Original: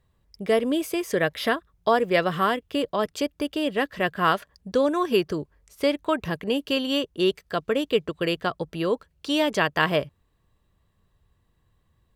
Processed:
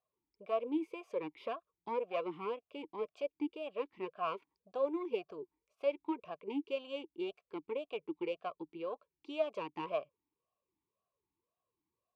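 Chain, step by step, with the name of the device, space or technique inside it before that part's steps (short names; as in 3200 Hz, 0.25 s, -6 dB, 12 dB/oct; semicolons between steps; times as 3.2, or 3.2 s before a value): talk box (tube stage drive 13 dB, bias 0.65; vowel sweep a-u 1.9 Hz); gain -1.5 dB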